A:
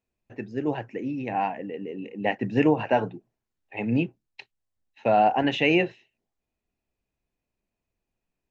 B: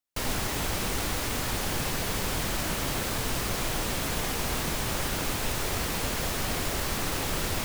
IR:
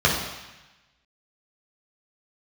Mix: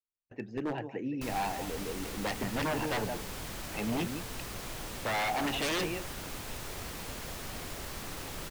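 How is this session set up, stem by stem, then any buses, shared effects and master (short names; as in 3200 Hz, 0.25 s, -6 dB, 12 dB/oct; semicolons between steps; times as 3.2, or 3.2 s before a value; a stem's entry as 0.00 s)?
-5.0 dB, 0.00 s, no send, echo send -12 dB, gate with hold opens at -40 dBFS
-11.0 dB, 1.05 s, no send, no echo send, dry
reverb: off
echo: echo 0.167 s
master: wavefolder -26 dBFS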